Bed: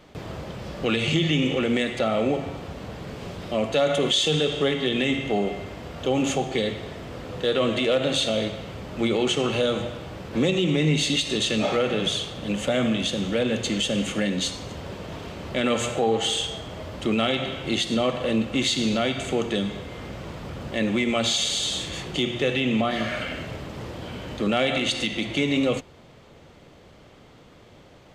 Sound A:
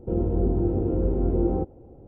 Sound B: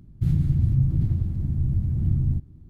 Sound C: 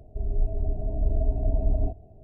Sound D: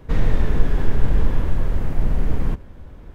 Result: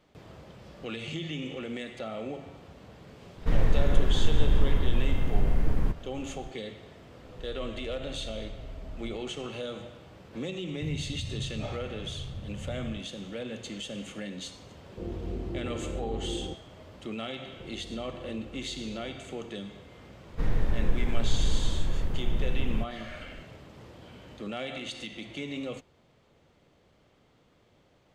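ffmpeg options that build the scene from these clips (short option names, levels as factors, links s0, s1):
-filter_complex "[4:a]asplit=2[s0][s1];[1:a]asplit=2[s2][s3];[0:a]volume=0.211[s4];[3:a]acompressor=threshold=0.0224:ratio=6:attack=3.2:release=140:knee=1:detection=peak[s5];[s3]acompressor=threshold=0.0158:ratio=6:attack=3.2:release=140:knee=1:detection=peak[s6];[s0]atrim=end=3.14,asetpts=PTS-STARTPTS,volume=0.562,afade=t=in:d=0.004:c=hsin,afade=t=out:st=3.136:d=0.004:c=hsin,adelay=148617S[s7];[s5]atrim=end=2.23,asetpts=PTS-STARTPTS,volume=0.562,afade=t=in:d=0.004:c=hsin,afade=t=out:st=2.226:d=0.004:c=hsin,adelay=7240[s8];[2:a]atrim=end=2.69,asetpts=PTS-STARTPTS,volume=0.158,afade=t=in:d=0.004:c=hsin,afade=t=out:st=2.686:d=0.004:c=hsin,adelay=10600[s9];[s2]atrim=end=2.07,asetpts=PTS-STARTPTS,volume=0.251,afade=t=in:d=0.004:c=hsin,afade=t=out:st=2.066:d=0.004:c=hsin,adelay=14900[s10];[s6]atrim=end=2.07,asetpts=PTS-STARTPTS,volume=0.398,afade=t=in:d=0.004:c=hsin,afade=t=out:st=2.066:d=0.004:c=hsin,adelay=17530[s11];[s1]atrim=end=3.14,asetpts=PTS-STARTPTS,volume=0.376,afade=t=in:d=0.004:c=hsin,afade=t=out:st=3.136:d=0.004:c=hsin,adelay=20290[s12];[s4][s7][s8][s9][s10][s11][s12]amix=inputs=7:normalize=0"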